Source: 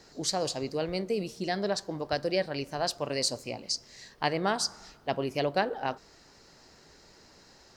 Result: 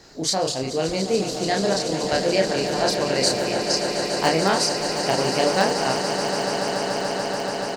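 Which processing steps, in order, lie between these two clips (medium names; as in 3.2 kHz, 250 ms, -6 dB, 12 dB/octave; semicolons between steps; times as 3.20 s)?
doubling 31 ms -2.5 dB; in parallel at -10 dB: integer overflow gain 13.5 dB; on the sum: echo with a slow build-up 144 ms, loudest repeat 8, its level -11 dB; trim +3 dB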